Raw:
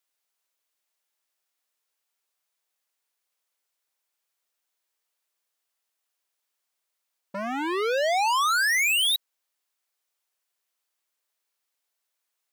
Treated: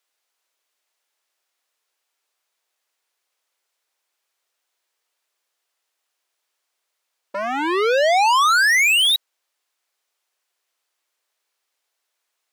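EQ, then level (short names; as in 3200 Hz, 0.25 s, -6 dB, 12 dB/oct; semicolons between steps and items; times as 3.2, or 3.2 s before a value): HPF 300 Hz 24 dB/oct; high shelf 9600 Hz -9 dB; +7.5 dB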